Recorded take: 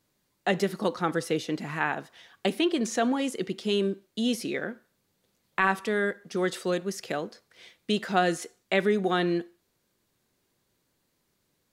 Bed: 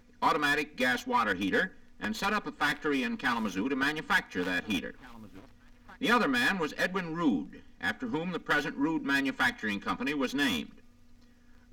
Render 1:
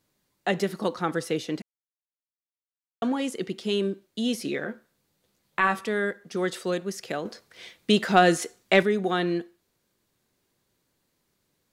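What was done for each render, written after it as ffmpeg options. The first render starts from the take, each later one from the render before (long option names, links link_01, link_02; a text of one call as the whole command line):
ffmpeg -i in.wav -filter_complex "[0:a]asettb=1/sr,asplit=3[link_01][link_02][link_03];[link_01]atrim=end=4.434[link_04];[link_02]atrim=start=4.43:end=5.84,asetpts=PTS-STARTPTS,afade=type=in:duration=0.004:curve=qsin,afade=type=out:start_time=1.406:duration=0.004:curve=qsin,asplit=2[link_05][link_06];[link_06]adelay=14,volume=-6.5dB[link_07];[link_05][link_07]amix=inputs=2:normalize=0,atrim=end_sample=62181[link_08];[link_03]atrim=start=5.836[link_09];[link_04][link_08]acrossfade=duration=0.004:curve1=hsin:curve2=qsin[link_10];[link_10][link_09]acrossfade=duration=0.004:curve1=qsin:curve2=hsin,asettb=1/sr,asplit=3[link_11][link_12][link_13];[link_11]atrim=end=7.254[link_14];[link_12]atrim=start=7.25:end=8.83,asetpts=PTS-STARTPTS,afade=type=in:duration=0.004:curve=qsin,afade=type=out:start_time=1.576:duration=0.004:curve=qsin,acontrast=58[link_15];[link_13]atrim=start=8.826[link_16];[link_14][link_15]acrossfade=duration=0.004:curve1=hsin:curve2=qsin[link_17];[link_17][link_16]acrossfade=duration=0.004:curve1=qsin:curve2=hsin,asplit=3[link_18][link_19][link_20];[link_18]atrim=end=1.62,asetpts=PTS-STARTPTS,afade=type=out:start_time=1.616:duration=0.004:curve=hsin[link_21];[link_19]atrim=start=1.62:end=3.02,asetpts=PTS-STARTPTS,volume=0[link_22];[link_20]atrim=start=3.02,asetpts=PTS-STARTPTS,afade=type=in:duration=0.004:curve=hsin[link_23];[link_21][link_22][link_23]concat=n=3:v=0:a=1" out.wav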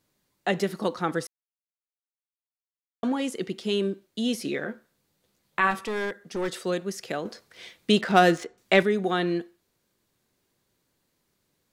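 ffmpeg -i in.wav -filter_complex "[0:a]asplit=3[link_01][link_02][link_03];[link_01]afade=type=out:start_time=5.7:duration=0.02[link_04];[link_02]aeval=exprs='clip(val(0),-1,0.0398)':channel_layout=same,afade=type=in:start_time=5.7:duration=0.02,afade=type=out:start_time=6.53:duration=0.02[link_05];[link_03]afade=type=in:start_time=6.53:duration=0.02[link_06];[link_04][link_05][link_06]amix=inputs=3:normalize=0,asettb=1/sr,asplit=3[link_07][link_08][link_09];[link_07]atrim=end=8.014[link_10];[link_08]atrim=start=8.01:end=8.58,asetpts=PTS-STARTPTS,afade=type=in:duration=0.004:curve=qsin,afade=type=out:start_time=0.566:duration=0.004:curve=qsin,adynamicsmooth=sensitivity=4.5:basefreq=2300[link_11];[link_09]atrim=start=8.576[link_12];[link_10][link_11]acrossfade=duration=0.004:curve1=hsin:curve2=qsin[link_13];[link_13][link_12]acrossfade=duration=0.004:curve1=qsin:curve2=hsin,asplit=3[link_14][link_15][link_16];[link_14]atrim=end=1.27,asetpts=PTS-STARTPTS,afade=type=out:start_time=1.266:duration=0.004:curve=hsin[link_17];[link_15]atrim=start=1.27:end=3.03,asetpts=PTS-STARTPTS,volume=0[link_18];[link_16]atrim=start=3.03,asetpts=PTS-STARTPTS,afade=type=in:duration=0.004:curve=hsin[link_19];[link_17][link_18][link_19]concat=n=3:v=0:a=1" out.wav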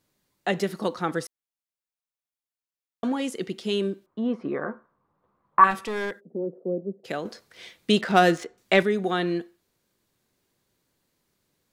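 ffmpeg -i in.wav -filter_complex "[0:a]asettb=1/sr,asplit=3[link_01][link_02][link_03];[link_01]atrim=end=4.064[link_04];[link_02]atrim=start=4.06:end=5.64,asetpts=PTS-STARTPTS,afade=type=in:duration=0.004:curve=qsin,afade=type=out:start_time=1.576:duration=0.004:curve=qsin,lowpass=frequency=1100:width_type=q:width=5.6[link_05];[link_03]atrim=start=5.636[link_06];[link_04][link_05]acrossfade=duration=0.004:curve1=hsin:curve2=qsin[link_07];[link_07][link_06]acrossfade=duration=0.004:curve1=qsin:curve2=hsin,asplit=3[link_08][link_09][link_10];[link_08]afade=type=out:start_time=6.19:duration=0.02[link_11];[link_09]asuperpass=centerf=310:order=8:qfactor=0.69,afade=type=in:start_time=6.19:duration=0.02,afade=type=out:start_time=7.04:duration=0.02[link_12];[link_10]afade=type=in:start_time=7.04:duration=0.02[link_13];[link_11][link_12][link_13]amix=inputs=3:normalize=0" out.wav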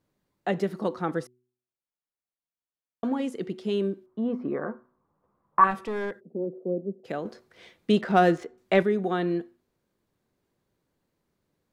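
ffmpeg -i in.wav -af "highshelf=frequency=2000:gain=-12,bandreject=frequency=123.9:width_type=h:width=4,bandreject=frequency=247.8:width_type=h:width=4,bandreject=frequency=371.7:width_type=h:width=4" out.wav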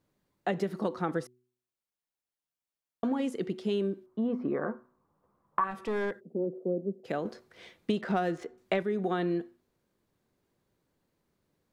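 ffmpeg -i in.wav -af "acompressor=threshold=-25dB:ratio=12" out.wav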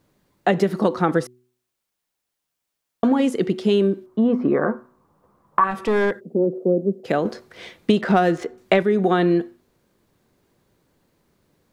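ffmpeg -i in.wav -af "volume=12dB,alimiter=limit=-2dB:level=0:latency=1" out.wav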